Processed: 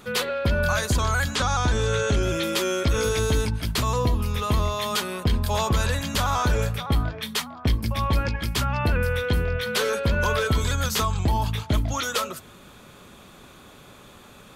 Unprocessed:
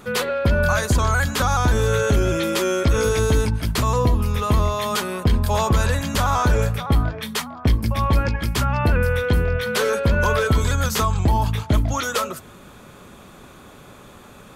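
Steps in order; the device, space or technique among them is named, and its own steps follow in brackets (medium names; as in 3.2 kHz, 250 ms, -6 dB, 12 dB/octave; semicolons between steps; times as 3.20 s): 1.35–2.23 s: low-pass 8.8 kHz 24 dB/octave; presence and air boost (peaking EQ 3.6 kHz +5 dB 1.4 oct; treble shelf 9.7 kHz +3.5 dB); trim -4.5 dB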